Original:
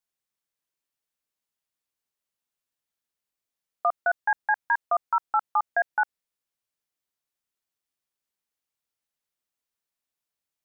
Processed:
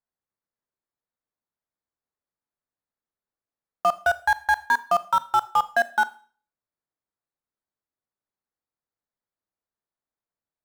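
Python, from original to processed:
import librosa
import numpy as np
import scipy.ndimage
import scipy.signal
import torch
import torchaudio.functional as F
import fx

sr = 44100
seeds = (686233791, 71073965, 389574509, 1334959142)

p1 = fx.wiener(x, sr, points=15)
p2 = fx.quant_companded(p1, sr, bits=2)
p3 = p1 + (p2 * librosa.db_to_amplitude(-6.5))
p4 = fx.rev_schroeder(p3, sr, rt60_s=0.43, comb_ms=26, drr_db=15.5)
y = p4 * librosa.db_to_amplitude(1.5)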